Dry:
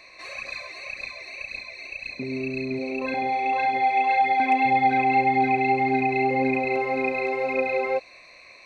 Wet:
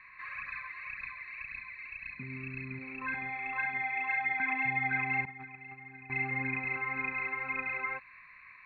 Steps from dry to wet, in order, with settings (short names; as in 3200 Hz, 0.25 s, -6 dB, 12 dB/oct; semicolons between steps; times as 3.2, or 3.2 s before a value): 5.25–6.1 gate -17 dBFS, range -16 dB; EQ curve 180 Hz 0 dB, 300 Hz -14 dB, 660 Hz -25 dB, 1000 Hz +2 dB, 1700 Hz +9 dB, 5500 Hz -29 dB; gain -4.5 dB